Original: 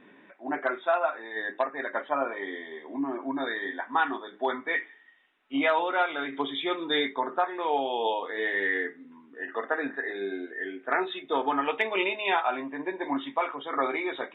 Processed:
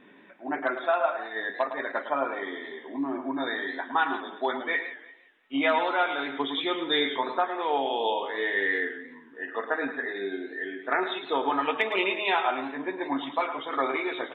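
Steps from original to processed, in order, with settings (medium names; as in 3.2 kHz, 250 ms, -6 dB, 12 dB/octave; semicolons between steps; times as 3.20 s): peaking EQ 3.6 kHz +2.5 dB; delay 108 ms -10 dB; modulated delay 174 ms, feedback 32%, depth 179 cents, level -15 dB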